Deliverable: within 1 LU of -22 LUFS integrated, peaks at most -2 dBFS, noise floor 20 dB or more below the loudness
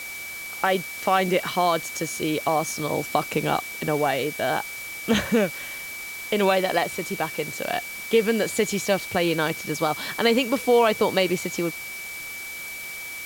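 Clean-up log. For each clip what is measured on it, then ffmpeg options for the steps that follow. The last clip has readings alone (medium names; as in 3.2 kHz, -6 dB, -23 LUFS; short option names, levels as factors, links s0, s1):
steady tone 2.3 kHz; tone level -34 dBFS; noise floor -36 dBFS; noise floor target -45 dBFS; loudness -24.5 LUFS; peak level -5.5 dBFS; loudness target -22.0 LUFS
-> -af "bandreject=f=2300:w=30"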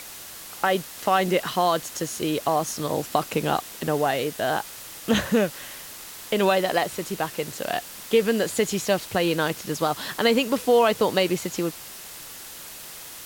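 steady tone not found; noise floor -41 dBFS; noise floor target -45 dBFS
-> -af "afftdn=nr=6:nf=-41"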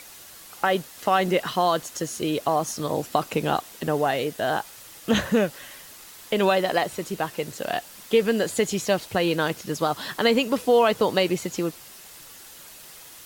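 noise floor -45 dBFS; loudness -24.5 LUFS; peak level -5.5 dBFS; loudness target -22.0 LUFS
-> -af "volume=1.33"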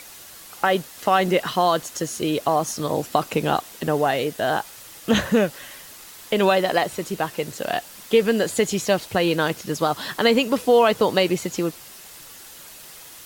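loudness -22.0 LUFS; peak level -3.0 dBFS; noise floor -43 dBFS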